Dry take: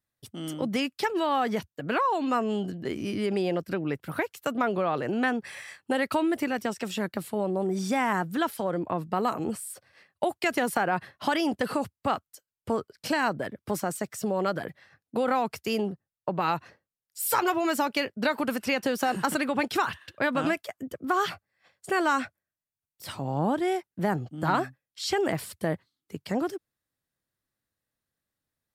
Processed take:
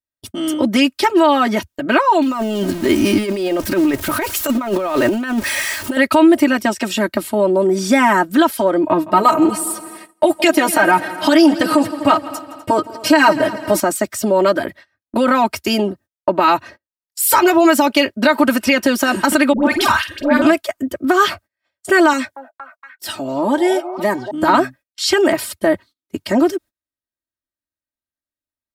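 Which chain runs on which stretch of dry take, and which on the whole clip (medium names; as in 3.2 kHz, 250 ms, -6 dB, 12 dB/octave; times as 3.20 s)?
2.22–5.97 s: jump at every zero crossing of -39.5 dBFS + treble shelf 5.8 kHz +5.5 dB + compressor with a negative ratio -29 dBFS, ratio -0.5
8.83–13.80 s: comb 6.4 ms, depth 84% + multi-head delay 83 ms, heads second and third, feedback 52%, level -19 dB
19.53–20.42 s: transient shaper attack -8 dB, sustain +5 dB + doubling 49 ms -9 dB + phase dispersion highs, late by 102 ms, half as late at 840 Hz
22.13–24.31 s: high-pass 340 Hz 6 dB/octave + repeats whose band climbs or falls 232 ms, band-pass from 620 Hz, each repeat 0.7 oct, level -5 dB + Shepard-style phaser falling 1.6 Hz
25.01–25.67 s: bass shelf 160 Hz -7.5 dB + tape noise reduction on one side only decoder only
whole clip: gate -49 dBFS, range -23 dB; comb 3.2 ms, depth 90%; loudness maximiser +12 dB; trim -1 dB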